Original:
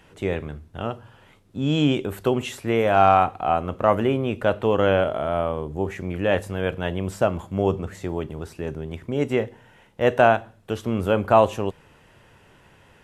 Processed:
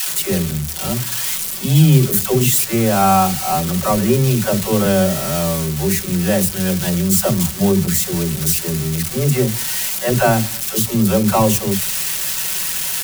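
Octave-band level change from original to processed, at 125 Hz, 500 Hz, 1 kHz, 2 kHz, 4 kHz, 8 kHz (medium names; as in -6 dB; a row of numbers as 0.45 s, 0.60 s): +11.5 dB, +1.5 dB, +1.5 dB, +3.5 dB, +12.0 dB, no reading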